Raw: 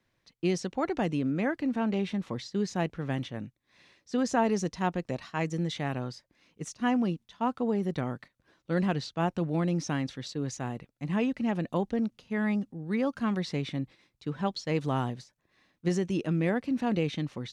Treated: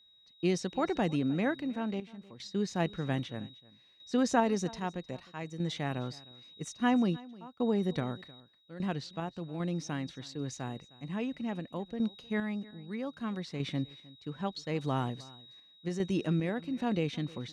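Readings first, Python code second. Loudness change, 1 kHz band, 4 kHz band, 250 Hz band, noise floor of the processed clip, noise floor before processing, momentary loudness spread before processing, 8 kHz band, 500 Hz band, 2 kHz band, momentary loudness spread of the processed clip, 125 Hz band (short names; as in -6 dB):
-3.5 dB, -3.5 dB, -1.0 dB, -3.5 dB, -62 dBFS, -76 dBFS, 8 LU, -2.5 dB, -3.5 dB, -3.0 dB, 14 LU, -3.5 dB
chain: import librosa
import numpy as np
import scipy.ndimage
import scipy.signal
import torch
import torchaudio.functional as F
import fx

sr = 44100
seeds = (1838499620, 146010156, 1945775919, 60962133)

y = x + 10.0 ** (-51.0 / 20.0) * np.sin(2.0 * np.pi * 3800.0 * np.arange(len(x)) / sr)
y = fx.tremolo_random(y, sr, seeds[0], hz=2.5, depth_pct=90)
y = y + 10.0 ** (-21.5 / 20.0) * np.pad(y, (int(309 * sr / 1000.0), 0))[:len(y)]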